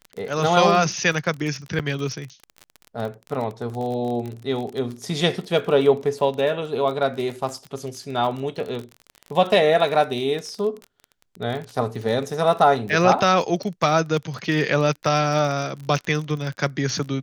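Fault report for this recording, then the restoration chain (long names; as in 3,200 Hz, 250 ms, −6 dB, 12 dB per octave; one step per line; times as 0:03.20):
surface crackle 30 per second −28 dBFS
0:01.79–0:01.80: drop-out 6.7 ms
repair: click removal
repair the gap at 0:01.79, 6.7 ms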